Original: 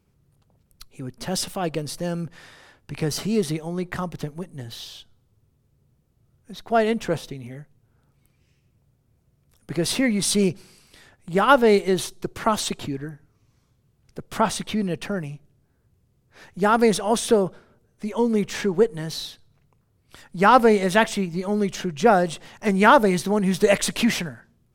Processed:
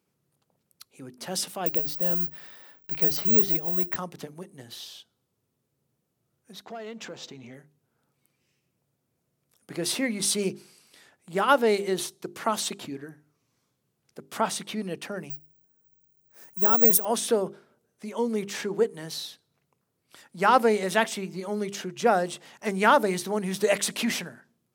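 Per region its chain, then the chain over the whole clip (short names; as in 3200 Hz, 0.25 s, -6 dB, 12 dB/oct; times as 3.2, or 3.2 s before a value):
1.66–3.96 LPF 5900 Hz + low shelf 140 Hz +6 dB + careless resampling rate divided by 2×, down none, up zero stuff
6.65–7.54 elliptic low-pass 7300 Hz + compressor, threshold -33 dBFS + sample leveller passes 1
15.3–17.05 EQ curve 180 Hz 0 dB, 3900 Hz -8 dB, 9200 Hz +11 dB + careless resampling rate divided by 2×, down filtered, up zero stuff
whole clip: HPF 200 Hz 12 dB/oct; high shelf 5500 Hz +4.5 dB; notches 50/100/150/200/250/300/350/400 Hz; gain -5 dB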